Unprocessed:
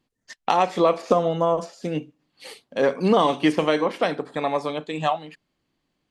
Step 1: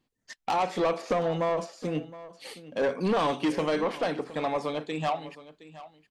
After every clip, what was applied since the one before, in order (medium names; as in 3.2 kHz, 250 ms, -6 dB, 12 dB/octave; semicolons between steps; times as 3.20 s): saturation -18 dBFS, distortion -10 dB; delay 717 ms -17 dB; trim -2.5 dB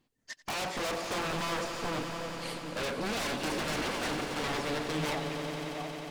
wavefolder -31 dBFS; echo with a slow build-up 90 ms, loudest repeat 5, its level -12 dB; trim +1.5 dB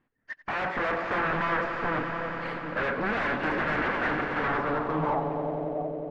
level rider gain up to 3.5 dB; low-pass sweep 1.7 kHz -> 560 Hz, 4.37–5.92 s